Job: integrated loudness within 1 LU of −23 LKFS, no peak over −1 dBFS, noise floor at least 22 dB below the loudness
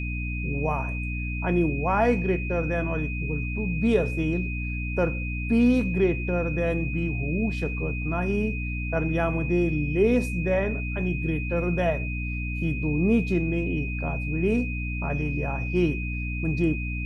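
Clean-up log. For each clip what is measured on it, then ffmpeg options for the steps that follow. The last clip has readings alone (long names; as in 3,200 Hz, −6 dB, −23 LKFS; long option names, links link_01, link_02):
mains hum 60 Hz; hum harmonics up to 300 Hz; level of the hum −28 dBFS; interfering tone 2,500 Hz; level of the tone −34 dBFS; integrated loudness −26.0 LKFS; sample peak −10.0 dBFS; target loudness −23.0 LKFS
→ -af "bandreject=frequency=60:width_type=h:width=6,bandreject=frequency=120:width_type=h:width=6,bandreject=frequency=180:width_type=h:width=6,bandreject=frequency=240:width_type=h:width=6,bandreject=frequency=300:width_type=h:width=6"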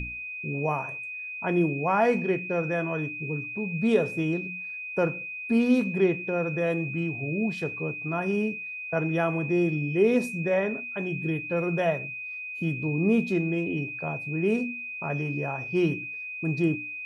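mains hum none found; interfering tone 2,500 Hz; level of the tone −34 dBFS
→ -af "bandreject=frequency=2500:width=30"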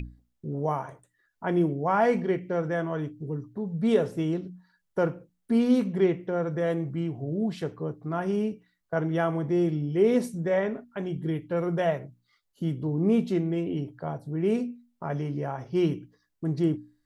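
interfering tone none found; integrated loudness −28.0 LKFS; sample peak −11.0 dBFS; target loudness −23.0 LKFS
→ -af "volume=5dB"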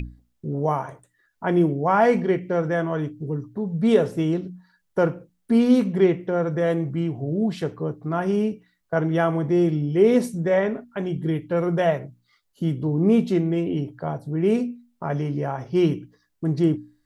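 integrated loudness −23.0 LKFS; sample peak −6.0 dBFS; background noise floor −71 dBFS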